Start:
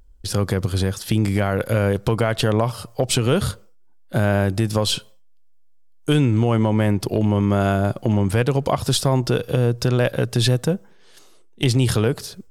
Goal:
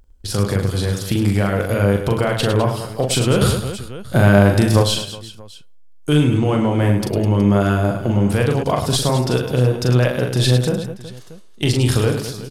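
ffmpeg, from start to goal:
-filter_complex "[0:a]aecho=1:1:40|104|206.4|370.2|632.4:0.631|0.398|0.251|0.158|0.1,asettb=1/sr,asplit=3[a][b][c];[a]atrim=end=3.414[d];[b]atrim=start=3.41:end=4.83,asetpts=PTS-STARTPTS,afade=t=in:d=0.004:c=qsin,afade=t=out:st=1.416:d=0.004:c=qsin,acontrast=37[e];[c]atrim=start=4.826[f];[d][e]acrossfade=d=0.004:c1=hsin:c2=qsin[g];[g][f]acrossfade=d=0.004:c1=qsin:c2=hsin"

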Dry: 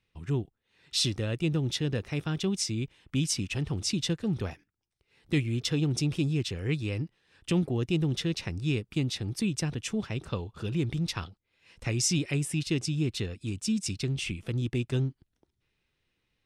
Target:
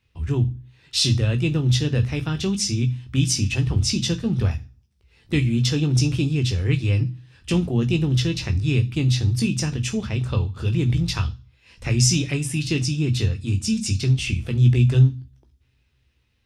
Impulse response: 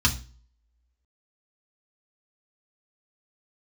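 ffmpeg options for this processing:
-filter_complex "[0:a]asplit=2[a][b];[b]lowshelf=f=130:g=9[c];[1:a]atrim=start_sample=2205,highshelf=f=2.2k:g=10,adelay=14[d];[c][d]afir=irnorm=-1:irlink=0,volume=-23dB[e];[a][e]amix=inputs=2:normalize=0,volume=4.5dB"

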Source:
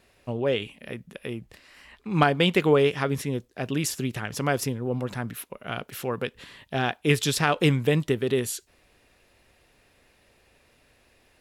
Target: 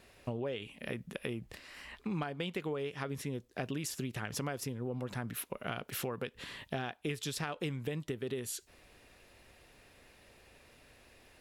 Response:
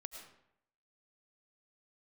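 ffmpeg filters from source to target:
-af "acompressor=threshold=-35dB:ratio=12,volume=1dB"

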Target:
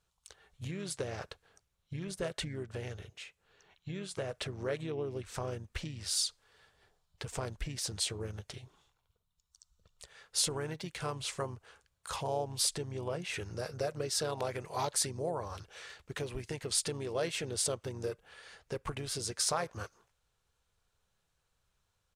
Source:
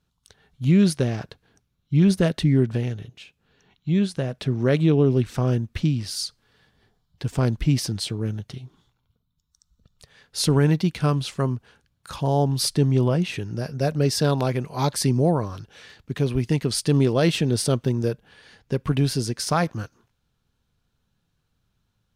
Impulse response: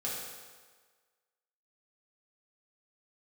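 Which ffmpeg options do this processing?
-filter_complex "[0:a]asplit=2[a][b];[b]asetrate=35002,aresample=44100,atempo=1.25992,volume=-8dB[c];[a][c]amix=inputs=2:normalize=0,acompressor=threshold=-25dB:ratio=6,equalizer=f=125:t=o:w=1:g=-5,equalizer=f=250:t=o:w=1:g=-11,equalizer=f=500:t=o:w=1:g=6,equalizer=f=1k:t=o:w=1:g=3,equalizer=f=2k:t=o:w=1:g=3,equalizer=f=8k:t=o:w=1:g=9,volume=-6.5dB"

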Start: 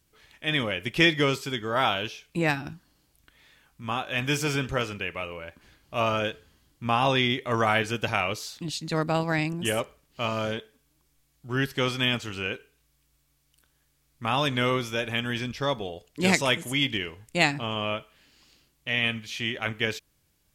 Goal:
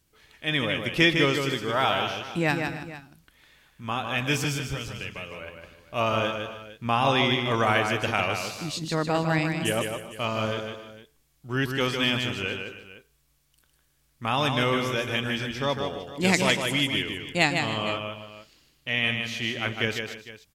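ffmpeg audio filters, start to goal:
-filter_complex "[0:a]asettb=1/sr,asplit=3[a][b][c];[a]atrim=end=4.444[d];[b]atrim=start=4.44:end=5.41,asetpts=PTS-STARTPTS,afade=t=in:d=0.004:c=qsin,afade=t=out:st=0.966:d=0.004:c=qsin,acrossover=split=160|3000[e][f][g];[f]acompressor=threshold=-37dB:ratio=6[h];[e][h][g]amix=inputs=3:normalize=0[i];[c]atrim=start=5.406[j];[d][i]acrossfade=d=0.004:c1=hsin:c2=qsin[k];[k][j]acrossfade=d=0.004:c1=qsin:c2=hsin,aecho=1:1:154|266|305|455:0.531|0.141|0.133|0.15"

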